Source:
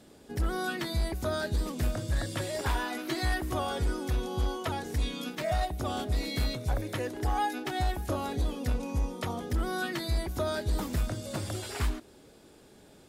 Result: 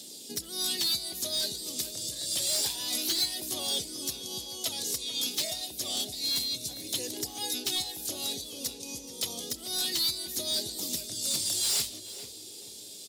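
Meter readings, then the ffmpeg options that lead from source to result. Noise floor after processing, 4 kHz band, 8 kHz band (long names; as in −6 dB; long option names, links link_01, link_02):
−45 dBFS, +11.5 dB, +14.5 dB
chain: -filter_complex "[0:a]tiltshelf=frequency=740:gain=7,acompressor=threshold=-31dB:ratio=6,aexciter=amount=5.1:drive=8.4:freq=2100,highpass=230,highshelf=frequency=3000:width_type=q:width=1.5:gain=9.5,asplit=2[link_01][link_02];[link_02]adelay=436,lowpass=frequency=1100:poles=1,volume=-9.5dB,asplit=2[link_03][link_04];[link_04]adelay=436,lowpass=frequency=1100:poles=1,volume=0.52,asplit=2[link_05][link_06];[link_06]adelay=436,lowpass=frequency=1100:poles=1,volume=0.52,asplit=2[link_07][link_08];[link_08]adelay=436,lowpass=frequency=1100:poles=1,volume=0.52,asplit=2[link_09][link_10];[link_10]adelay=436,lowpass=frequency=1100:poles=1,volume=0.52,asplit=2[link_11][link_12];[link_12]adelay=436,lowpass=frequency=1100:poles=1,volume=0.52[link_13];[link_03][link_05][link_07][link_09][link_11][link_13]amix=inputs=6:normalize=0[link_14];[link_01][link_14]amix=inputs=2:normalize=0,volume=19dB,asoftclip=hard,volume=-19dB,aphaser=in_gain=1:out_gain=1:delay=2.4:decay=0.22:speed=0.28:type=triangular,asplit=2[link_15][link_16];[link_16]aecho=0:1:426:0.119[link_17];[link_15][link_17]amix=inputs=2:normalize=0,volume=-5dB"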